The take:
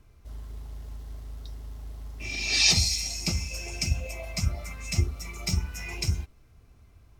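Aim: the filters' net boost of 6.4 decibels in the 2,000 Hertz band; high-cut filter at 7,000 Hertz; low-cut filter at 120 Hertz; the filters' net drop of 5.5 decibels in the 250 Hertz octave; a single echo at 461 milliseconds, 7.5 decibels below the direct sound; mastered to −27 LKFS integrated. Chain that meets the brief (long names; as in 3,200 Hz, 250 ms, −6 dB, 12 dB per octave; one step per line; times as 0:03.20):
high-pass filter 120 Hz
low-pass filter 7,000 Hz
parametric band 250 Hz −8.5 dB
parametric band 2,000 Hz +8.5 dB
single-tap delay 461 ms −7.5 dB
level −1.5 dB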